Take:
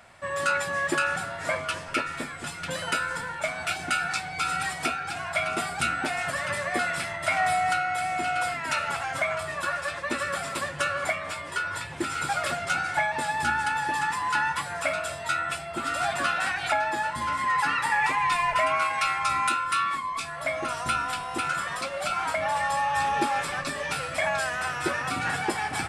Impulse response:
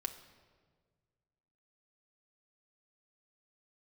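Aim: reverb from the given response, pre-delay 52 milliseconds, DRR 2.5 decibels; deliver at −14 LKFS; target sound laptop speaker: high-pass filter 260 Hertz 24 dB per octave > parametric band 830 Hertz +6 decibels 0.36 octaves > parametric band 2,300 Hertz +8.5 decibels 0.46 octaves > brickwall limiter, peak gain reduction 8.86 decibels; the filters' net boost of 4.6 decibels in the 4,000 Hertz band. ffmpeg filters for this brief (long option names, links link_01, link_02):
-filter_complex "[0:a]equalizer=frequency=4000:width_type=o:gain=4,asplit=2[link_01][link_02];[1:a]atrim=start_sample=2205,adelay=52[link_03];[link_02][link_03]afir=irnorm=-1:irlink=0,volume=-2dB[link_04];[link_01][link_04]amix=inputs=2:normalize=0,highpass=frequency=260:width=0.5412,highpass=frequency=260:width=1.3066,equalizer=frequency=830:width_type=o:width=0.36:gain=6,equalizer=frequency=2300:width_type=o:width=0.46:gain=8.5,volume=9.5dB,alimiter=limit=-5.5dB:level=0:latency=1"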